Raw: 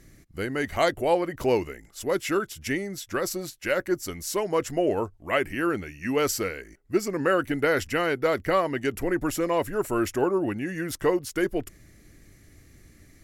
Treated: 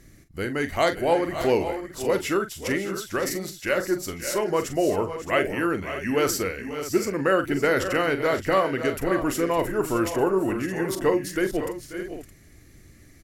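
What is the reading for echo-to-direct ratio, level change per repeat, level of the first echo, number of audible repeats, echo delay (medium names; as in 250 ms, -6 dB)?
-6.0 dB, no regular repeats, -10.0 dB, 3, 42 ms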